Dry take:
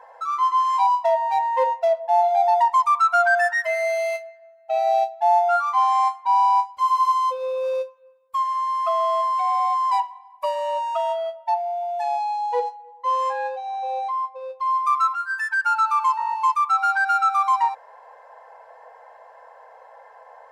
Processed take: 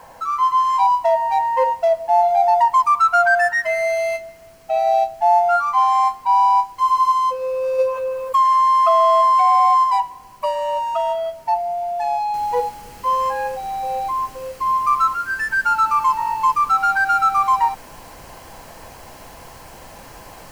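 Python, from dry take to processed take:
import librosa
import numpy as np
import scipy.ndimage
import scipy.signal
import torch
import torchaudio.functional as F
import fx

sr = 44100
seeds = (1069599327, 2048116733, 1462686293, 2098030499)

y = fx.env_flatten(x, sr, amount_pct=70, at=(7.78, 9.83), fade=0.02)
y = fx.noise_floor_step(y, sr, seeds[0], at_s=12.34, before_db=-54, after_db=-45, tilt_db=3.0)
y = fx.notch(y, sr, hz=3600.0, q=9.0)
y = y * librosa.db_to_amplitude(3.0)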